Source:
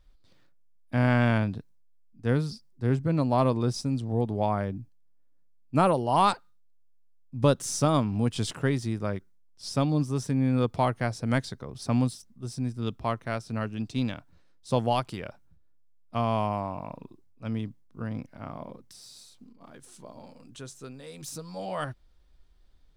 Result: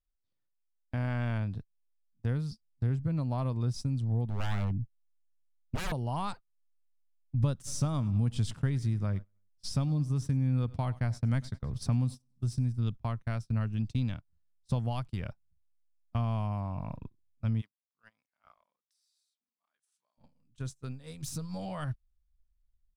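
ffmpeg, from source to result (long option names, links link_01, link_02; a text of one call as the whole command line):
ffmpeg -i in.wav -filter_complex "[0:a]asettb=1/sr,asplit=3[link_01][link_02][link_03];[link_01]atrim=end=4.294[link_04];[link_02]atrim=start=4.29:end=5.92,asetpts=PTS-STARTPTS,afade=type=in:duration=0.004:curve=qsin,afade=type=out:start_time=1.626:duration=0.004:curve=qsin,aeval=exprs='0.0501*(abs(mod(val(0)/0.0501+3,4)-2)-1)':channel_layout=same[link_05];[link_03]atrim=start=5.916[link_06];[link_04][link_05]acrossfade=duration=0.004:curve1=hsin:curve2=qsin[link_07];[link_07][link_06]acrossfade=duration=0.004:curve1=qsin:curve2=hsin,asplit=3[link_08][link_09][link_10];[link_08]afade=type=out:start_time=7.66:duration=0.02[link_11];[link_09]aecho=1:1:100|200|300:0.0841|0.0412|0.0202,afade=type=in:start_time=7.66:duration=0.02,afade=type=out:start_time=12.65:duration=0.02[link_12];[link_10]afade=type=in:start_time=12.65:duration=0.02[link_13];[link_11][link_12][link_13]amix=inputs=3:normalize=0,asplit=3[link_14][link_15][link_16];[link_14]afade=type=out:start_time=17.6:duration=0.02[link_17];[link_15]highpass=1100,afade=type=in:start_time=17.6:duration=0.02,afade=type=out:start_time=20.17:duration=0.02[link_18];[link_16]afade=type=in:start_time=20.17:duration=0.02[link_19];[link_17][link_18][link_19]amix=inputs=3:normalize=0,acompressor=threshold=-38dB:ratio=2.5,agate=range=-28dB:threshold=-43dB:ratio=16:detection=peak,asubboost=boost=6:cutoff=150" out.wav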